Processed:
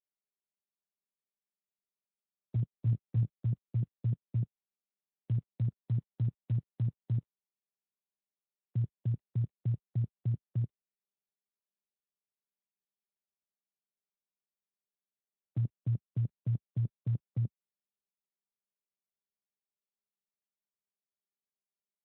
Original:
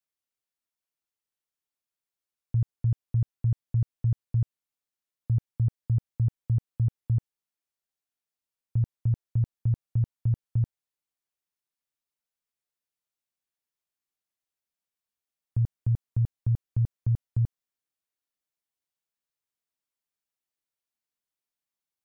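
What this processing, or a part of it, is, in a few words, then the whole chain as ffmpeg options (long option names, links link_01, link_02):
mobile call with aggressive noise cancelling: -filter_complex "[0:a]asettb=1/sr,asplit=3[link_01][link_02][link_03];[link_01]atrim=end=2.714[link_04];[link_02]atrim=start=2.71:end=3.46,asetpts=PTS-STARTPTS,afade=type=in:duration=0.004:curve=qsin,afade=type=out:start_time=0.746:duration=0.004:curve=qsin,asplit=2[link_05][link_06];[link_06]adelay=19,volume=-3.5dB[link_07];[link_05][link_07]amix=inputs=2:normalize=0,atrim=end_sample=33075[link_08];[link_03]atrim=start=3.456[link_09];[link_04][link_08]acrossfade=duration=0.004:curve1=hsin:curve2=qsin[link_10];[link_10][link_09]acrossfade=duration=0.004:curve1=qsin:curve2=hsin,highpass=frequency=120:width=0.5412,highpass=frequency=120:width=1.3066,afftdn=noise_reduction=30:noise_floor=-51,volume=-1dB" -ar 8000 -c:a libopencore_amrnb -b:a 12200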